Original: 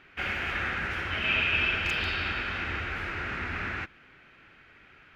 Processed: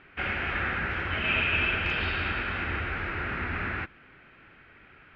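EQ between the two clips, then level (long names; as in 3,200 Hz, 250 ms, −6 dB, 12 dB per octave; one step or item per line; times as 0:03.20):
high-frequency loss of the air 280 metres
+3.5 dB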